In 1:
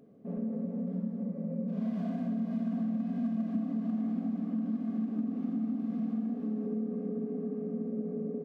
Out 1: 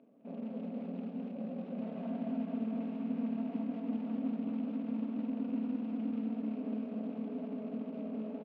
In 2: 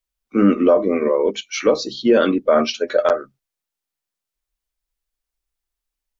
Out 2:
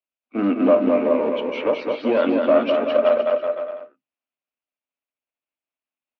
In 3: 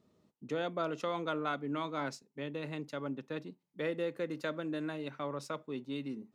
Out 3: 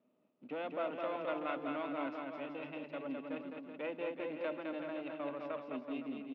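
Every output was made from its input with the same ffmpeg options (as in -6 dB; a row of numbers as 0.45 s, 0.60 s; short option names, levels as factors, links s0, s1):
-filter_complex "[0:a]aeval=exprs='if(lt(val(0),0),0.447*val(0),val(0))':c=same,acrusher=bits=6:mode=log:mix=0:aa=0.000001,highpass=250,equalizer=f=260:t=q:w=4:g=9,equalizer=f=410:t=q:w=4:g=-4,equalizer=f=620:t=q:w=4:g=7,equalizer=f=1800:t=q:w=4:g=-4,equalizer=f=2600:t=q:w=4:g=6,lowpass=f=3000:w=0.5412,lowpass=f=3000:w=1.3066,asplit=2[s0][s1];[s1]aecho=0:1:210|378|512.4|619.9|705.9:0.631|0.398|0.251|0.158|0.1[s2];[s0][s2]amix=inputs=2:normalize=0,volume=0.631"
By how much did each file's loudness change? -4.0 LU, -2.0 LU, -3.0 LU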